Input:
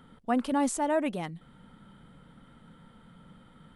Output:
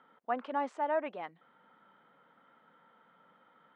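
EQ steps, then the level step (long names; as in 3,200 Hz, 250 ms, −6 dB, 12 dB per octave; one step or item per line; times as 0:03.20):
high-pass filter 590 Hz 12 dB per octave
low-pass filter 2,000 Hz 12 dB per octave
high-frequency loss of the air 57 metres
−1.0 dB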